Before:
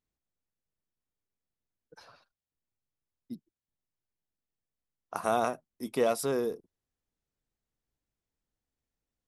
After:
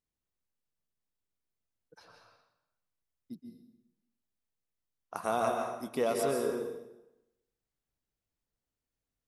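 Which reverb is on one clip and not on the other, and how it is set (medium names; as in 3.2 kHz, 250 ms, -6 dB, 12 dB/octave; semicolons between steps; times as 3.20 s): plate-style reverb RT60 0.92 s, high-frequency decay 0.85×, pre-delay 115 ms, DRR 2 dB; trim -3.5 dB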